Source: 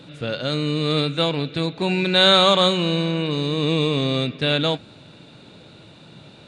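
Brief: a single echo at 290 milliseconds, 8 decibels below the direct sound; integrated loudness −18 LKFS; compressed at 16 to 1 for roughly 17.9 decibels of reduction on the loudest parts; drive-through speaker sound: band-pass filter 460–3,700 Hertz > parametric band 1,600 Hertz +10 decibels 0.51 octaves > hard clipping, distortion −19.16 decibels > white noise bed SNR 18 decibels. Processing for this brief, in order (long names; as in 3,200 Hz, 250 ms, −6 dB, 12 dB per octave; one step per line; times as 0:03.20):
downward compressor 16 to 1, threshold −29 dBFS
band-pass filter 460–3,700 Hz
parametric band 1,600 Hz +10 dB 0.51 octaves
single-tap delay 290 ms −8 dB
hard clipping −25 dBFS
white noise bed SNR 18 dB
level +18 dB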